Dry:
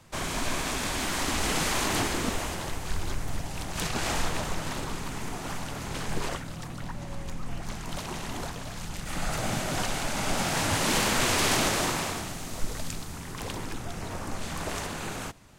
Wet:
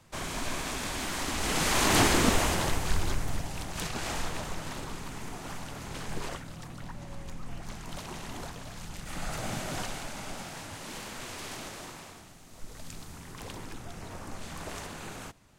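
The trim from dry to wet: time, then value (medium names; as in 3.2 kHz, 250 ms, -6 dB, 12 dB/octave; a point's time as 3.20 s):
1.36 s -4 dB
2.03 s +5.5 dB
2.63 s +5.5 dB
3.97 s -5 dB
9.75 s -5 dB
10.71 s -16 dB
12.46 s -16 dB
13.03 s -6.5 dB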